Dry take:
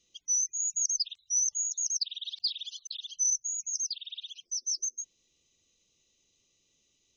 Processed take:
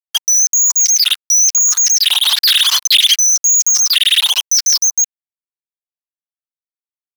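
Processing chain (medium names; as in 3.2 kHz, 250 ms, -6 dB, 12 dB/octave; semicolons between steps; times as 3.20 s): fuzz box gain 56 dB, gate -55 dBFS; step-sequenced high-pass 3.8 Hz 920–2500 Hz; trim +2.5 dB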